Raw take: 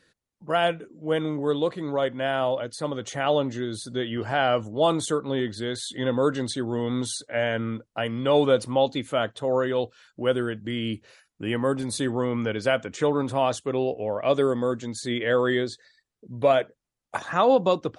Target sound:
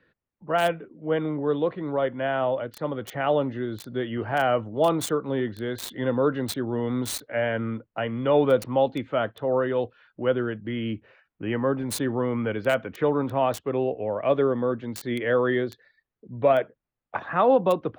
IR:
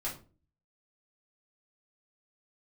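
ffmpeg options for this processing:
-filter_complex "[0:a]acrossover=split=190|620|3000[a][b][c][d];[d]acrusher=bits=4:mix=0:aa=0.000001[e];[a][b][c][e]amix=inputs=4:normalize=0,asettb=1/sr,asplit=3[f][g][h];[f]atrim=end=10.924[i];[g]atrim=start=10.92:end=11.92,asetpts=PTS-STARTPTS,afade=t=in:d=0.004:c=qsin,afade=t=out:st=0.996:d=0.004:c=qsin,equalizer=f=4.2k:t=o:w=0.4:g=-6[j];[h]atrim=start=11.916[k];[i][j]acrossfade=d=0.004:c1=hsin:c2=qsin[l];[l][k]acrossfade=d=0.004:c1=qsin:c2=hsin"

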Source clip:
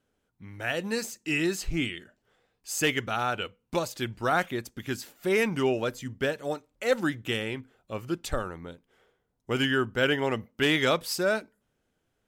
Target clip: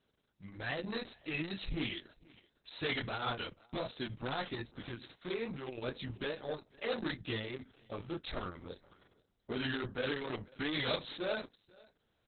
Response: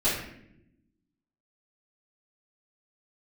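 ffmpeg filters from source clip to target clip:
-filter_complex "[0:a]asettb=1/sr,asplit=3[a][b][c];[a]atrim=end=1.354[d];[b]atrim=start=1.35:end=1.78,asetpts=PTS-STARTPTS,afade=t=in:d=0.004:c=qsin,afade=t=out:st=0.426:d=0.004:c=qsin,equalizer=f=250:t=o:w=0.33:g=4,equalizer=f=400:t=o:w=0.33:g=-5,equalizer=f=630:t=o:w=0.33:g=4,equalizer=f=1.25k:t=o:w=0.33:g=-4[e];[c]atrim=start=1.776[f];[d][e]acrossfade=d=0.004:c1=hsin:c2=qsin[g];[g][f]acrossfade=d=0.004:c1=qsin:c2=hsin,asettb=1/sr,asplit=3[h][i][j];[h]atrim=end=4.604[k];[i]atrim=start=4.6:end=5.84,asetpts=PTS-STARTPTS,afade=t=in:d=0.004:c=qsin,afade=t=out:st=1.236:d=0.004:c=qsin,acrossover=split=420|970|7800[l][m][n][o];[l]acompressor=threshold=-35dB:ratio=4[p];[m]acompressor=threshold=-41dB:ratio=4[q];[n]acompressor=threshold=-40dB:ratio=4[r];[o]acompressor=threshold=-46dB:ratio=4[s];[p][q][r][s]amix=inputs=4:normalize=0[t];[j]atrim=start=5.836[u];[k][t]acrossfade=d=0.004:c1=hsin:c2=qsin[v];[v][u]acrossfade=d=0.004:c1=qsin:c2=hsin,asoftclip=type=tanh:threshold=-29dB,aexciter=amount=5.2:drive=2.1:freq=3.9k,flanger=delay=20:depth=6.5:speed=2.5,aecho=1:1:491:0.075,volume=1dB" -ar 48000 -c:a libopus -b:a 6k

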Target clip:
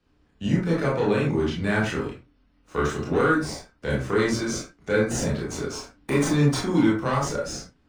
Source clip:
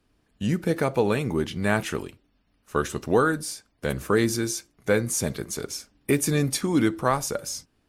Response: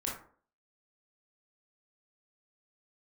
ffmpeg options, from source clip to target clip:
-filter_complex "[0:a]acrossover=split=130|1600|7800[a][b][c][d];[b]asoftclip=type=tanh:threshold=-19.5dB[e];[d]acrusher=samples=33:mix=1:aa=0.000001:lfo=1:lforange=33:lforate=0.28[f];[a][e][c][f]amix=inputs=4:normalize=0[g];[1:a]atrim=start_sample=2205,afade=t=out:st=0.18:d=0.01,atrim=end_sample=8379[h];[g][h]afir=irnorm=-1:irlink=0"

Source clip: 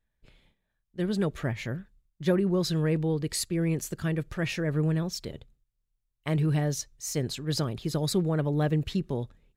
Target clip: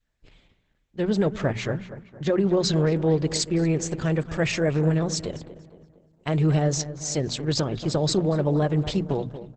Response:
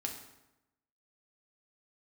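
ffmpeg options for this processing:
-filter_complex "[0:a]adynamicequalizer=threshold=0.00631:dfrequency=630:dqfactor=1.1:tfrequency=630:tqfactor=1.1:attack=5:release=100:ratio=0.375:range=2.5:mode=boostabove:tftype=bell,alimiter=limit=-17.5dB:level=0:latency=1:release=129,asplit=3[a][b][c];[a]afade=t=out:st=4.03:d=0.02[d];[b]equalizer=f=7.5k:w=3.9:g=6.5,afade=t=in:st=4.03:d=0.02,afade=t=out:st=6.78:d=0.02[e];[c]afade=t=in:st=6.78:d=0.02[f];[d][e][f]amix=inputs=3:normalize=0,bandreject=f=60:t=h:w=6,bandreject=f=120:t=h:w=6,bandreject=f=180:t=h:w=6,bandreject=f=240:t=h:w=6,asplit=2[g][h];[h]adelay=233,lowpass=f=2.6k:p=1,volume=-13dB,asplit=2[i][j];[j]adelay=233,lowpass=f=2.6k:p=1,volume=0.48,asplit=2[k][l];[l]adelay=233,lowpass=f=2.6k:p=1,volume=0.48,asplit=2[m][n];[n]adelay=233,lowpass=f=2.6k:p=1,volume=0.48,asplit=2[o][p];[p]adelay=233,lowpass=f=2.6k:p=1,volume=0.48[q];[g][i][k][m][o][q]amix=inputs=6:normalize=0,volume=5dB" -ar 48000 -c:a libopus -b:a 10k

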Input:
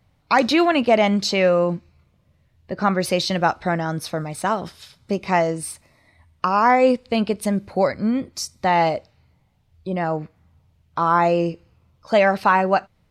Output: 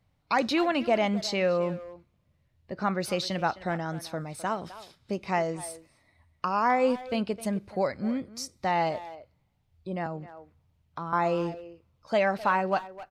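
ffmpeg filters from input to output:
-filter_complex "[0:a]asplit=2[a][b];[b]adelay=260,highpass=300,lowpass=3.4k,asoftclip=type=hard:threshold=-14dB,volume=-14dB[c];[a][c]amix=inputs=2:normalize=0,asettb=1/sr,asplit=3[d][e][f];[d]atrim=end=10.064[g];[e]atrim=start=10.06:end=11.13,asetpts=PTS-STARTPTS,afade=t=in:d=0.004:c=qsin,afade=t=out:st=1.066:d=0.004:c=qsin,acrossover=split=260[h][i];[i]acompressor=threshold=-27dB:ratio=4[j];[h][j]amix=inputs=2:normalize=0[k];[f]atrim=start=11.126[l];[g][k]acrossfade=d=0.004:c1=hsin:c2=qsin[m];[m][l]acrossfade=d=0.004:c1=qsin:c2=hsin,volume=-8.5dB"

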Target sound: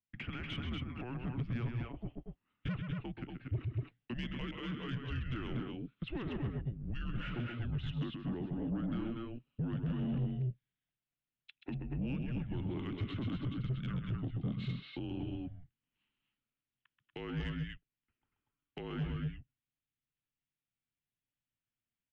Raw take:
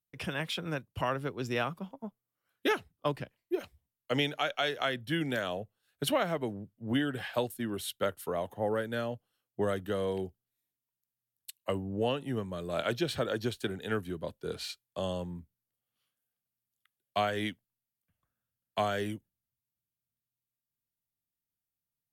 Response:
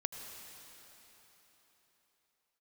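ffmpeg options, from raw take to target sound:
-af "acompressor=threshold=-37dB:ratio=3,alimiter=level_in=7dB:limit=-24dB:level=0:latency=1:release=139,volume=-7dB,highpass=f=240:t=q:w=0.5412,highpass=f=240:t=q:w=1.307,lowpass=f=3.5k:t=q:w=0.5176,lowpass=f=3.5k:t=q:w=0.7071,lowpass=f=3.5k:t=q:w=1.932,afreqshift=-250,equalizer=f=125:t=o:w=1:g=10,equalizer=f=250:t=o:w=1:g=4,equalizer=f=500:t=o:w=1:g=-7,equalizer=f=1k:t=o:w=1:g=-7,aecho=1:1:131|234|241:0.473|0.376|0.596,asoftclip=type=tanh:threshold=-31.5dB,adynamicequalizer=threshold=0.00126:dfrequency=1800:dqfactor=0.7:tfrequency=1800:tqfactor=0.7:attack=5:release=100:ratio=0.375:range=1.5:mode=cutabove:tftype=highshelf,volume=2dB"

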